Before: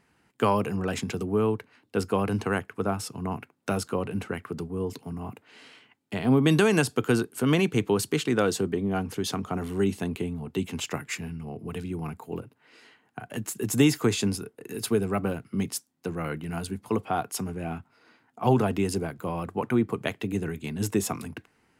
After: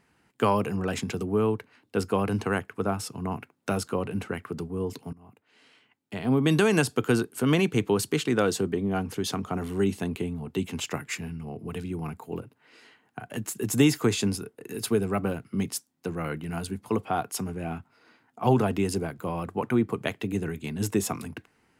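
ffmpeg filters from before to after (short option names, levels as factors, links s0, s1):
-filter_complex "[0:a]asplit=2[s0][s1];[s0]atrim=end=5.13,asetpts=PTS-STARTPTS,afade=t=out:st=5.126:d=0.004:c=hsin:silence=0.0944061[s2];[s1]atrim=start=5.13,asetpts=PTS-STARTPTS,afade=t=in:d=1.65:silence=0.0944061[s3];[s2][s3]concat=n=2:v=0:a=1"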